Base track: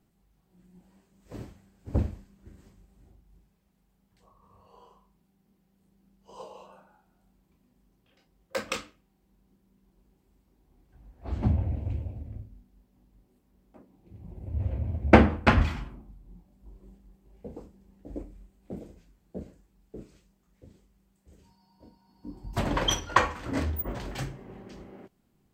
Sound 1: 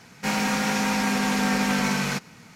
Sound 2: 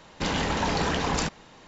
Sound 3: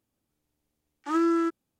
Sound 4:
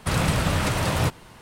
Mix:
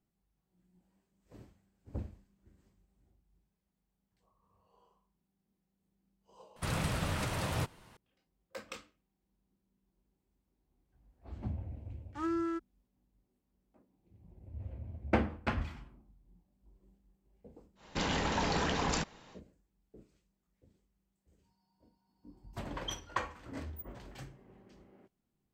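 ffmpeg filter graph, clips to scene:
ffmpeg -i bed.wav -i cue0.wav -i cue1.wav -i cue2.wav -i cue3.wav -filter_complex "[0:a]volume=-13.5dB[link_01];[3:a]highshelf=frequency=6700:gain=-5.5[link_02];[4:a]atrim=end=1.41,asetpts=PTS-STARTPTS,volume=-11.5dB,afade=type=in:duration=0.004:curve=hsin,afade=type=out:start_time=1.406:duration=0.004:curve=hsin,adelay=6560[link_03];[link_02]atrim=end=1.79,asetpts=PTS-STARTPTS,volume=-10dB,afade=type=in:duration=0.004:curve=hsin,afade=type=out:start_time=1.786:duration=0.004:curve=hsin,adelay=11090[link_04];[2:a]atrim=end=1.67,asetpts=PTS-STARTPTS,volume=-6dB,afade=type=in:duration=0.1,afade=type=out:start_time=1.57:duration=0.1,adelay=17750[link_05];[link_01][link_03][link_04][link_05]amix=inputs=4:normalize=0" out.wav

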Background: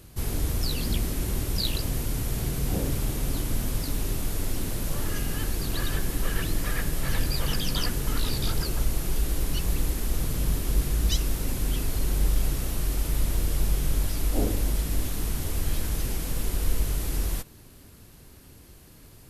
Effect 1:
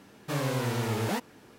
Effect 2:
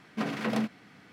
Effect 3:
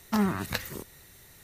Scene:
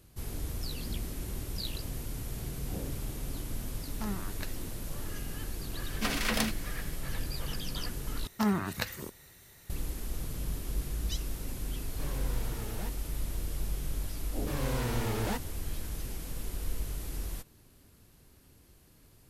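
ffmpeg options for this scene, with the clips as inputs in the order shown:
ffmpeg -i bed.wav -i cue0.wav -i cue1.wav -i cue2.wav -filter_complex "[3:a]asplit=2[link_01][link_02];[1:a]asplit=2[link_03][link_04];[0:a]volume=-9.5dB[link_05];[2:a]crystalizer=i=9:c=0[link_06];[link_04]dynaudnorm=framelen=110:gausssize=7:maxgain=8dB[link_07];[link_05]asplit=2[link_08][link_09];[link_08]atrim=end=8.274[link_10];[link_02]atrim=end=1.43,asetpts=PTS-STARTPTS,volume=-2.5dB[link_11];[link_09]atrim=start=9.696[link_12];[link_01]atrim=end=1.43,asetpts=PTS-STARTPTS,volume=-12dB,afade=type=in:duration=0.004:curve=hsin,afade=type=out:start_time=1.426:duration=0.004:curve=hsin,adelay=3880[link_13];[link_06]atrim=end=1.12,asetpts=PTS-STARTPTS,volume=-5dB,afade=type=in:duration=0.004:curve=hsin,afade=type=out:start_time=1.116:duration=0.004:curve=hsin,adelay=5840[link_14];[link_03]atrim=end=1.58,asetpts=PTS-STARTPTS,volume=-13.5dB,afade=type=in:duration=0.004:curve=hsin,afade=type=out:start_time=1.576:duration=0.004:curve=hsin,adelay=515970S[link_15];[link_07]atrim=end=1.58,asetpts=PTS-STARTPTS,volume=-11.5dB,afade=type=in:duration=0.004:curve=hsin,afade=type=out:start_time=1.576:duration=0.004:curve=hsin,adelay=14180[link_16];[link_10][link_11]acrossfade=duration=0.004:curve1=hsin:curve2=hsin[link_17];[link_17][link_12]acrossfade=duration=0.004:curve1=hsin:curve2=hsin[link_18];[link_18][link_13][link_14][link_15][link_16]amix=inputs=5:normalize=0" out.wav

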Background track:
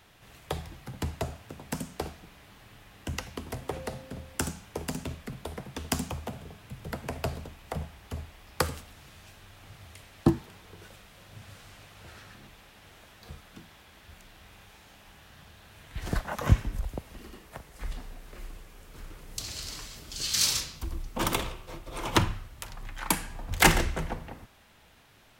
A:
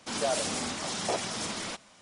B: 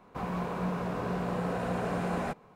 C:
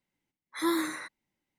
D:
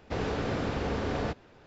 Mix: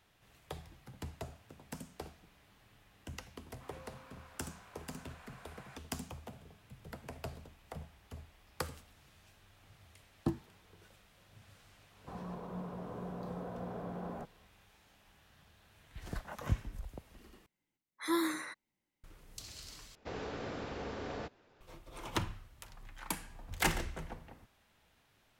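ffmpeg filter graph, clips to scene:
ffmpeg -i bed.wav -i cue0.wav -i cue1.wav -i cue2.wav -i cue3.wav -filter_complex "[2:a]asplit=2[link_01][link_02];[0:a]volume=-11.5dB[link_03];[link_01]highpass=1300[link_04];[link_02]lowpass=1100[link_05];[4:a]bass=frequency=250:gain=-5,treble=frequency=4000:gain=1[link_06];[link_03]asplit=3[link_07][link_08][link_09];[link_07]atrim=end=17.464[link_10];[3:a]atrim=end=1.58,asetpts=PTS-STARTPTS,volume=-4dB[link_11];[link_08]atrim=start=19.036:end=19.954[link_12];[link_06]atrim=end=1.66,asetpts=PTS-STARTPTS,volume=-9dB[link_13];[link_09]atrim=start=21.606[link_14];[link_04]atrim=end=2.55,asetpts=PTS-STARTPTS,volume=-14.5dB,afade=type=in:duration=0.004:curve=hsin,afade=type=out:start_time=2.546:duration=0.004:curve=hsin,adelay=152145S[link_15];[link_05]atrim=end=2.55,asetpts=PTS-STARTPTS,volume=-10dB,afade=type=in:duration=0.004:curve=hsin,afade=type=out:start_time=2.546:duration=0.004:curve=hsin,adelay=11920[link_16];[link_10][link_11]acrossfade=duration=0.004:curve1=hsin:curve2=hsin[link_17];[link_17][link_12]acrossfade=duration=0.004:curve1=hsin:curve2=hsin[link_18];[link_18][link_13]acrossfade=duration=0.004:curve1=hsin:curve2=hsin[link_19];[link_19][link_14]acrossfade=duration=0.004:curve1=hsin:curve2=hsin[link_20];[link_20][link_15][link_16]amix=inputs=3:normalize=0" out.wav

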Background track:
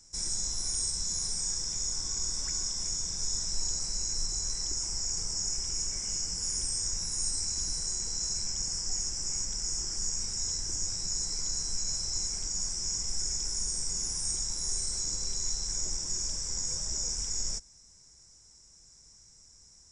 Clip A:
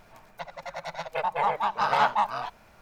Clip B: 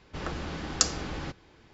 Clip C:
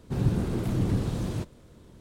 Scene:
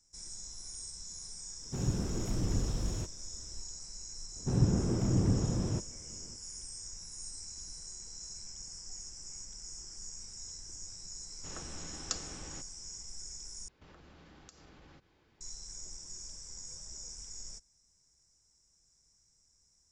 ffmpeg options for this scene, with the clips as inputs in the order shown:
ffmpeg -i bed.wav -i cue0.wav -i cue1.wav -i cue2.wav -filter_complex "[3:a]asplit=2[link_01][link_02];[2:a]asplit=2[link_03][link_04];[0:a]volume=-13dB[link_05];[link_01]asubboost=boost=11.5:cutoff=60[link_06];[link_02]lowpass=frequency=1300:poles=1[link_07];[link_04]acompressor=threshold=-42dB:ratio=6:attack=3.2:release=140:knee=1:detection=peak[link_08];[link_05]asplit=2[link_09][link_10];[link_09]atrim=end=13.684[link_11];[link_08]atrim=end=1.73,asetpts=PTS-STARTPTS,volume=-11.5dB[link_12];[link_10]atrim=start=15.406[link_13];[link_06]atrim=end=2,asetpts=PTS-STARTPTS,volume=-7dB,afade=type=in:duration=0.004:curve=hsin,afade=type=out:start_time=1.996:duration=0.004:curve=hsin,adelay=1620[link_14];[link_07]atrim=end=2,asetpts=PTS-STARTPTS,volume=-2dB,afade=type=in:duration=0.004:curve=hsin,afade=type=out:start_time=1.996:duration=0.004:curve=hsin,adelay=4360[link_15];[link_03]atrim=end=1.73,asetpts=PTS-STARTPTS,volume=-12.5dB,afade=type=in:duration=0.004:curve=hsin,afade=type=out:start_time=1.726:duration=0.004:curve=hsin,adelay=498330S[link_16];[link_11][link_12]acrossfade=duration=0.004:curve1=hsin:curve2=hsin[link_17];[link_17][link_13]acrossfade=duration=0.004:curve1=hsin:curve2=hsin[link_18];[link_18][link_14][link_15][link_16]amix=inputs=4:normalize=0" out.wav

